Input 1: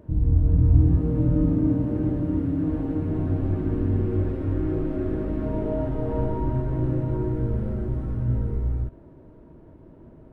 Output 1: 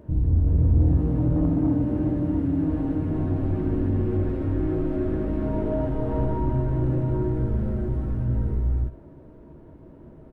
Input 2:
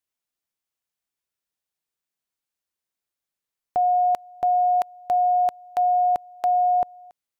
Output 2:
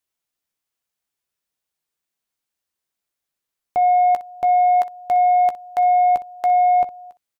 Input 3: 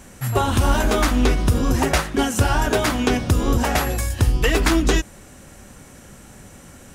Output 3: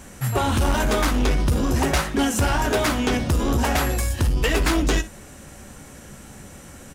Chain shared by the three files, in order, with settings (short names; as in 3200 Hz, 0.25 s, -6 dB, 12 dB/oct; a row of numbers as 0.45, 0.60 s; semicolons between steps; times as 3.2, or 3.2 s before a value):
soft clip -16 dBFS; on a send: early reflections 14 ms -11 dB, 61 ms -16.5 dB; on the sum: normalise peaks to -12 dBFS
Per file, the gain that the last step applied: +1.0, +3.5, +1.0 dB